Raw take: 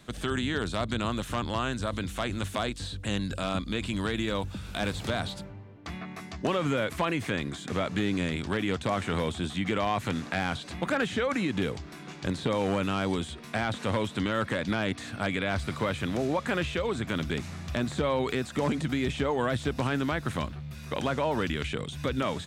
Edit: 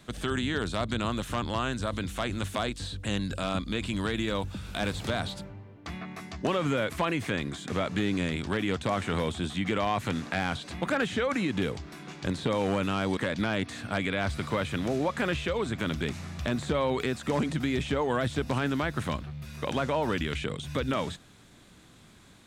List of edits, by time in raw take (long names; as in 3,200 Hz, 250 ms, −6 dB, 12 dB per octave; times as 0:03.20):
0:13.17–0:14.46: remove